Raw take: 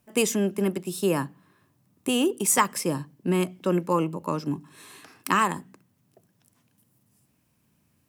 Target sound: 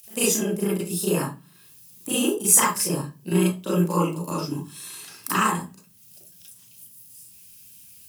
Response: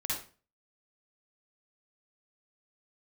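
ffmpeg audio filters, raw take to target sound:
-filter_complex "[0:a]highshelf=f=8800:g=8,bandreject=f=50:t=h:w=6,bandreject=f=100:t=h:w=6,bandreject=f=150:t=h:w=6,bandreject=f=200:t=h:w=6,acrossover=split=280|2700[s0][s1][s2];[s1]aeval=exprs='val(0)*sin(2*PI*29*n/s)':c=same[s3];[s2]acompressor=mode=upward:threshold=0.0178:ratio=2.5[s4];[s0][s3][s4]amix=inputs=3:normalize=0[s5];[1:a]atrim=start_sample=2205,asetrate=66150,aresample=44100[s6];[s5][s6]afir=irnorm=-1:irlink=0,volume=1.41"

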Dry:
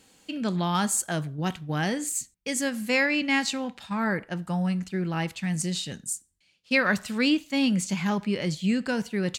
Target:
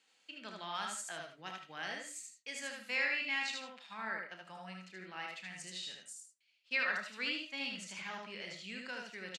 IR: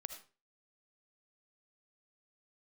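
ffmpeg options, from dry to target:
-filter_complex "[0:a]highpass=130,lowpass=2500,aderivative,aecho=1:1:32|76:0.316|0.631[s0];[1:a]atrim=start_sample=2205,atrim=end_sample=4410[s1];[s0][s1]afir=irnorm=-1:irlink=0,volume=2.11"

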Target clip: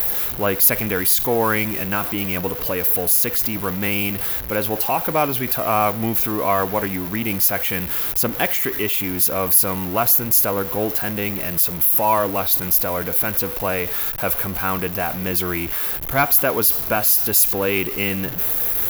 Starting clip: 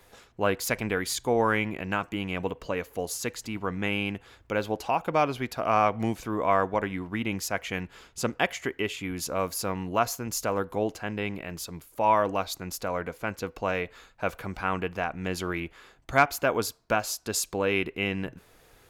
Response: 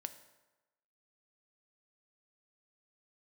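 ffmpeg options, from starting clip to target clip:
-af "aeval=exprs='val(0)+0.5*0.0266*sgn(val(0))':c=same,apsyclip=3.98,aexciter=amount=8.3:drive=7.7:freq=11000,volume=0.376"

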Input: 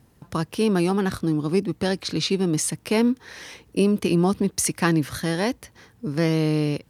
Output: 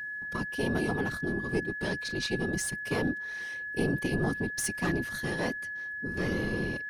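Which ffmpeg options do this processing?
-af "aeval=exprs='(tanh(4.47*val(0)+0.4)-tanh(0.4))/4.47':c=same,afftfilt=real='hypot(re,im)*cos(2*PI*random(0))':imag='hypot(re,im)*sin(2*PI*random(1))':win_size=512:overlap=0.75,aeval=exprs='val(0)+0.02*sin(2*PI*1700*n/s)':c=same,volume=0.891"

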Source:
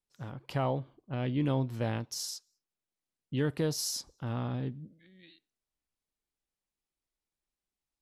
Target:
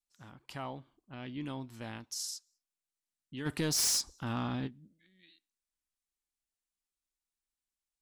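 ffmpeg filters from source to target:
-filter_complex "[0:a]equalizer=f=125:t=o:w=1:g=-10,equalizer=f=500:t=o:w=1:g=-10,equalizer=f=8000:t=o:w=1:g=6,asplit=3[s0][s1][s2];[s0]afade=t=out:st=3.45:d=0.02[s3];[s1]aeval=exprs='0.106*(cos(1*acos(clip(val(0)/0.106,-1,1)))-cos(1*PI/2))+0.0531*(cos(5*acos(clip(val(0)/0.106,-1,1)))-cos(5*PI/2))':c=same,afade=t=in:st=3.45:d=0.02,afade=t=out:st=4.66:d=0.02[s4];[s2]afade=t=in:st=4.66:d=0.02[s5];[s3][s4][s5]amix=inputs=3:normalize=0,volume=0.596"

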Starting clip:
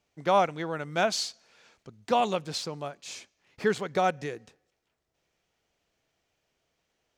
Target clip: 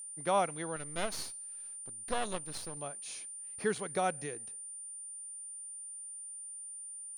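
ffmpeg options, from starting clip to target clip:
-filter_complex "[0:a]asettb=1/sr,asplit=3[s0][s1][s2];[s0]atrim=end=0.764[s3];[s1]atrim=start=0.76:end=2.77,asetpts=PTS-STARTPTS,afade=t=in:d=0.004:c=qsin,afade=t=out:st=2.006:d=0.004:c=qsin,aeval=exprs='max(val(0),0)':c=same[s4];[s2]atrim=start=2.766[s5];[s3][s4]acrossfade=d=0.004:c1=hsin:c2=qsin[s6];[s6][s5]acrossfade=d=0.004:c1=qsin:c2=hsin,aeval=exprs='val(0)+0.0158*sin(2*PI*9200*n/s)':c=same,volume=0.473"

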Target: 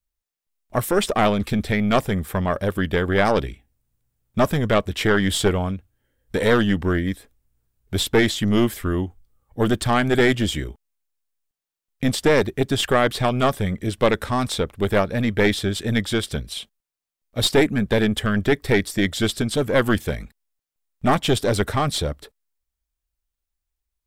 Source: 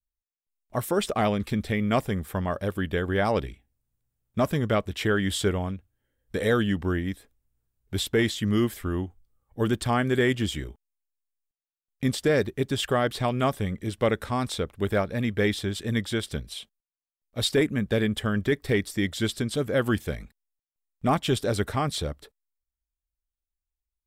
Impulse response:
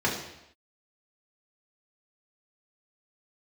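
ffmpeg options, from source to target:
-af "aeval=exprs='0.224*(cos(1*acos(clip(val(0)/0.224,-1,1)))-cos(1*PI/2))+0.0708*(cos(2*acos(clip(val(0)/0.224,-1,1)))-cos(2*PI/2))+0.00794*(cos(5*acos(clip(val(0)/0.224,-1,1)))-cos(5*PI/2))':c=same,volume=1.78"

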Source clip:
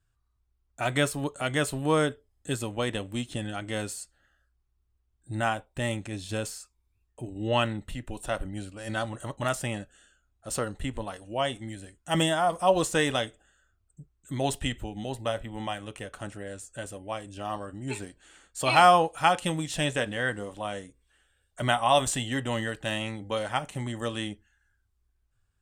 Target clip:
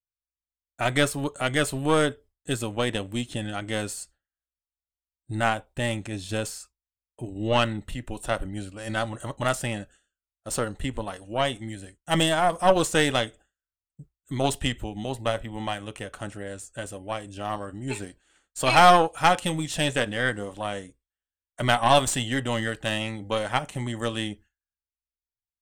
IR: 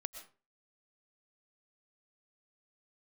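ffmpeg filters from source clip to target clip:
-af "agate=range=0.0224:threshold=0.00501:ratio=3:detection=peak,aeval=exprs='0.562*(cos(1*acos(clip(val(0)/0.562,-1,1)))-cos(1*PI/2))+0.0355*(cos(4*acos(clip(val(0)/0.562,-1,1)))-cos(4*PI/2))+0.0708*(cos(6*acos(clip(val(0)/0.562,-1,1)))-cos(6*PI/2))':c=same,volume=1.33"

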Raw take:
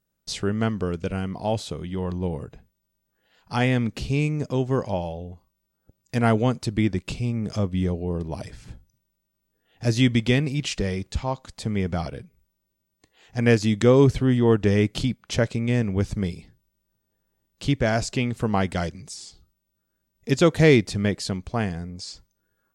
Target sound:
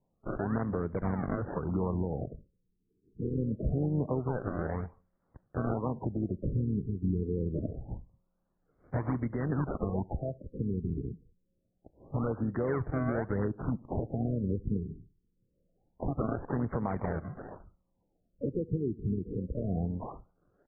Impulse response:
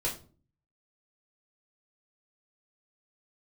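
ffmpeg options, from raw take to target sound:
-filter_complex "[0:a]aeval=exprs='0.596*(cos(1*acos(clip(val(0)/0.596,-1,1)))-cos(1*PI/2))+0.0237*(cos(6*acos(clip(val(0)/0.596,-1,1)))-cos(6*PI/2))+0.0237*(cos(8*acos(clip(val(0)/0.596,-1,1)))-cos(8*PI/2))':c=same,atempo=1.1,acrossover=split=150|5100[s0][s1][s2];[s1]acrusher=samples=28:mix=1:aa=0.000001:lfo=1:lforange=44.8:lforate=0.94[s3];[s0][s3][s2]amix=inputs=3:normalize=0,acompressor=threshold=0.0562:ratio=10,asplit=2[s4][s5];[s5]adelay=70,lowpass=f=1700:p=1,volume=0.0631,asplit=2[s6][s7];[s7]adelay=70,lowpass=f=1700:p=1,volume=0.41,asplit=2[s8][s9];[s9]adelay=70,lowpass=f=1700:p=1,volume=0.41[s10];[s4][s6][s8][s10]amix=inputs=4:normalize=0,asplit=3[s11][s12][s13];[s12]asetrate=29433,aresample=44100,atempo=1.49831,volume=0.158[s14];[s13]asetrate=52444,aresample=44100,atempo=0.840896,volume=0.251[s15];[s11][s14][s15]amix=inputs=3:normalize=0,asuperstop=centerf=3400:order=4:qfactor=0.55,tiltshelf=f=660:g=-3.5,alimiter=level_in=1.12:limit=0.0631:level=0:latency=1:release=173,volume=0.891,afftfilt=real='re*lt(b*sr/1024,450*pow(2400/450,0.5+0.5*sin(2*PI*0.25*pts/sr)))':imag='im*lt(b*sr/1024,450*pow(2400/450,0.5+0.5*sin(2*PI*0.25*pts/sr)))':win_size=1024:overlap=0.75,volume=1.78"

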